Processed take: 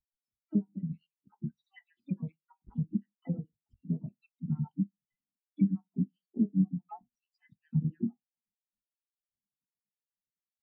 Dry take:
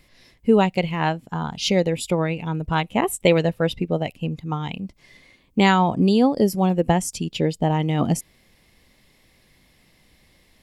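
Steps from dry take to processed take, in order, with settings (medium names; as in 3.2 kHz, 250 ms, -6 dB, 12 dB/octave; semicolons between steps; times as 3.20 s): random holes in the spectrogram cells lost 69%; bass shelf 180 Hz +7.5 dB; band-stop 500 Hz, Q 12; in parallel at -8.5 dB: integer overflow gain 21.5 dB; on the sum: de-esser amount 85%; reverberation RT60 0.25 s, pre-delay 3 ms, DRR 7 dB; compression 16:1, threshold -26 dBFS, peak gain reduction 16.5 dB; low-pass that closes with the level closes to 3 kHz, closed at -30 dBFS; bass shelf 430 Hz +7 dB; harmony voices -12 st -14 dB, -3 st -15 dB, +7 st -6 dB; spectral contrast expander 2.5:1; trim -6 dB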